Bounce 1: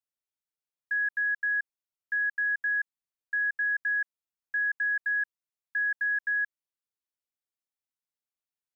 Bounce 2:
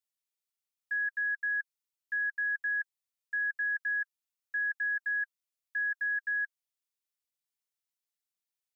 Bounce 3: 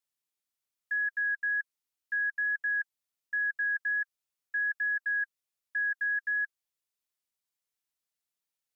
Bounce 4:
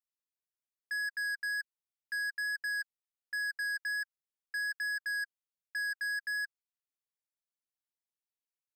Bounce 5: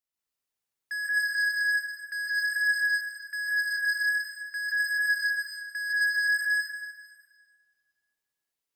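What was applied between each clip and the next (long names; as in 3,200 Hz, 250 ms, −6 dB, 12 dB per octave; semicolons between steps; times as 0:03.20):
tilt shelving filter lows −6 dB, about 1,400 Hz; notch filter 1,600 Hz, Q 18; level −3 dB
pitch vibrato 1.3 Hz 7.8 cents; level +1.5 dB
leveller curve on the samples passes 3; level −6.5 dB
dense smooth reverb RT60 1.7 s, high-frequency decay 0.9×, pre-delay 115 ms, DRR −4.5 dB; level +2 dB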